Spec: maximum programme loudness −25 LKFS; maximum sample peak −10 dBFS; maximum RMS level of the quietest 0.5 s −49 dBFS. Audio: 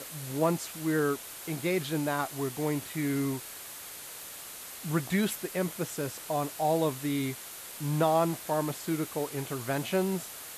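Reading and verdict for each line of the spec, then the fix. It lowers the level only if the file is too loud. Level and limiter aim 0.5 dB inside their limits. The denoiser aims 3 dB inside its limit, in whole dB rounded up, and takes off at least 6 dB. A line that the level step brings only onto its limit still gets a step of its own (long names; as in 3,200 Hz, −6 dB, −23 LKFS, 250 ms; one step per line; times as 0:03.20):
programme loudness −31.5 LKFS: in spec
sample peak −13.5 dBFS: in spec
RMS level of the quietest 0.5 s −44 dBFS: out of spec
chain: broadband denoise 8 dB, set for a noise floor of −44 dBFS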